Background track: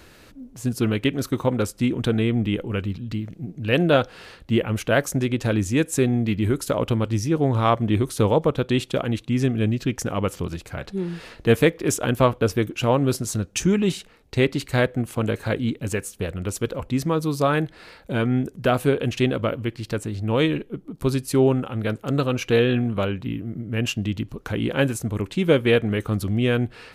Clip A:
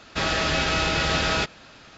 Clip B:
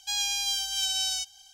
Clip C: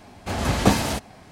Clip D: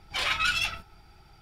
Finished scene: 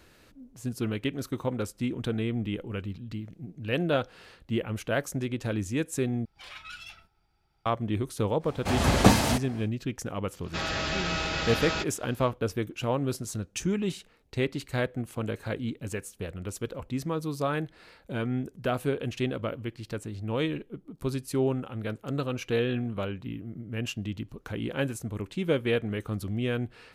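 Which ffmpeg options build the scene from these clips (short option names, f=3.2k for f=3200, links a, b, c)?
-filter_complex "[0:a]volume=-8.5dB,asplit=2[a][b];[a]atrim=end=6.254[c];[4:a]atrim=end=1.41,asetpts=PTS-STARTPTS,volume=-17.5dB[d];[b]atrim=start=7.656[e];[3:a]atrim=end=1.31,asetpts=PTS-STARTPTS,volume=-0.5dB,afade=t=in:d=0.1,afade=t=out:st=1.21:d=0.1,adelay=8390[f];[1:a]atrim=end=1.97,asetpts=PTS-STARTPTS,volume=-7dB,afade=t=in:d=0.1,afade=t=out:st=1.87:d=0.1,adelay=10380[g];[c][d]acrossfade=d=0.004:c1=hsin:c2=hsin[h];[h][e]acrossfade=d=0.004:c1=hsin:c2=hsin[i];[i][f][g]amix=inputs=3:normalize=0"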